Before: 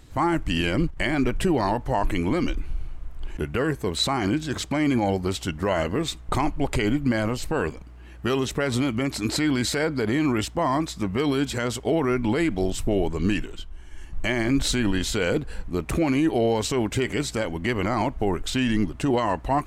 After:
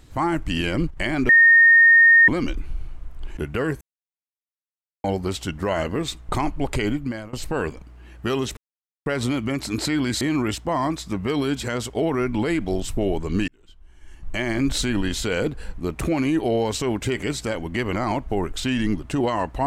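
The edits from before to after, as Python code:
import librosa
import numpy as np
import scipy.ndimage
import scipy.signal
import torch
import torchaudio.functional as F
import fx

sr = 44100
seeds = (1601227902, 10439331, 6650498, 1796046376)

y = fx.edit(x, sr, fx.bleep(start_s=1.29, length_s=0.99, hz=1840.0, db=-9.0),
    fx.silence(start_s=3.81, length_s=1.23),
    fx.fade_out_to(start_s=6.85, length_s=0.48, floor_db=-21.0),
    fx.insert_silence(at_s=8.57, length_s=0.49),
    fx.cut(start_s=9.72, length_s=0.39),
    fx.fade_in_span(start_s=13.38, length_s=1.04), tone=tone)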